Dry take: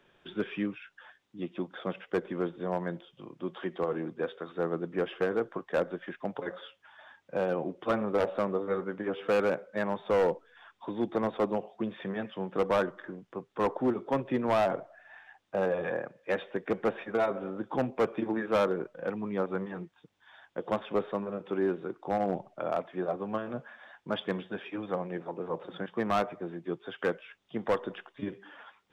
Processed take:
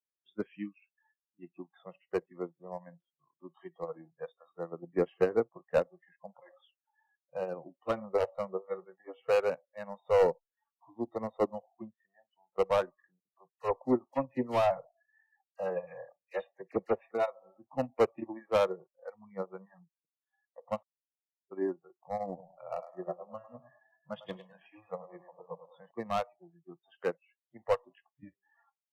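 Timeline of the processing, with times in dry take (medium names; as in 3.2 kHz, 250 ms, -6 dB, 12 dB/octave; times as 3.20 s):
4.83–5.79 s: bass shelf 370 Hz +4.5 dB
11.91–12.58 s: gain -9 dB
13.20–17.11 s: phase dispersion lows, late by 53 ms, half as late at 2.5 kHz
20.83–21.51 s: mute
22.27–25.91 s: feedback delay 103 ms, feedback 49%, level -5 dB
whole clip: spectral noise reduction 29 dB; dynamic bell 1.6 kHz, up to -5 dB, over -47 dBFS, Q 1.6; upward expansion 2.5:1, over -36 dBFS; trim +3.5 dB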